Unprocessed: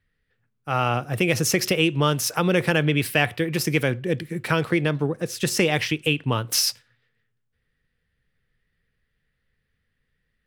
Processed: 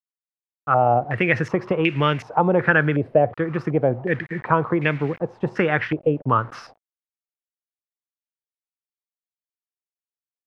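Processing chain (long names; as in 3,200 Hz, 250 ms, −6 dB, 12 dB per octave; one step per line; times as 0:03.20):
bit reduction 7 bits
low-pass on a step sequencer 2.7 Hz 590–2,200 Hz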